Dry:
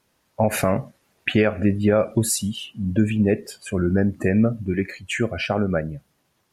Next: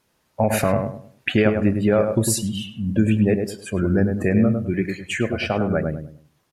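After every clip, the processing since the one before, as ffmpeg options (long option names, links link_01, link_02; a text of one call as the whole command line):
ffmpeg -i in.wav -filter_complex "[0:a]asplit=2[link_01][link_02];[link_02]adelay=103,lowpass=frequency=1200:poles=1,volume=-4.5dB,asplit=2[link_03][link_04];[link_04]adelay=103,lowpass=frequency=1200:poles=1,volume=0.32,asplit=2[link_05][link_06];[link_06]adelay=103,lowpass=frequency=1200:poles=1,volume=0.32,asplit=2[link_07][link_08];[link_08]adelay=103,lowpass=frequency=1200:poles=1,volume=0.32[link_09];[link_01][link_03][link_05][link_07][link_09]amix=inputs=5:normalize=0" out.wav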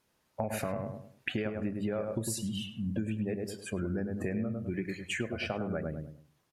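ffmpeg -i in.wav -af "bandreject=frequency=50:width_type=h:width=6,bandreject=frequency=100:width_type=h:width=6,bandreject=frequency=150:width_type=h:width=6,acompressor=threshold=-23dB:ratio=6,volume=-7dB" out.wav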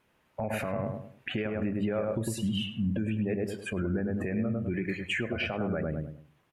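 ffmpeg -i in.wav -af "highshelf=frequency=3600:width_type=q:width=1.5:gain=-8,alimiter=level_in=3dB:limit=-24dB:level=0:latency=1:release=38,volume=-3dB,volume=5.5dB" out.wav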